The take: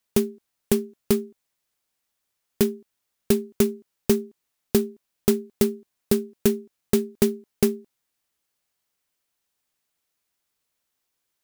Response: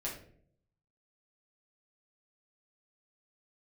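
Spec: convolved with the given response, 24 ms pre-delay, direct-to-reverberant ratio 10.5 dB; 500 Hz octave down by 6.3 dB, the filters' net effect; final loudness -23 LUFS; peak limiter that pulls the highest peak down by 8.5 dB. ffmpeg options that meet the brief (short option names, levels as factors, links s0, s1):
-filter_complex "[0:a]equalizer=f=500:t=o:g=-9,alimiter=limit=0.188:level=0:latency=1,asplit=2[s0][s1];[1:a]atrim=start_sample=2205,adelay=24[s2];[s1][s2]afir=irnorm=-1:irlink=0,volume=0.251[s3];[s0][s3]amix=inputs=2:normalize=0,volume=2.82"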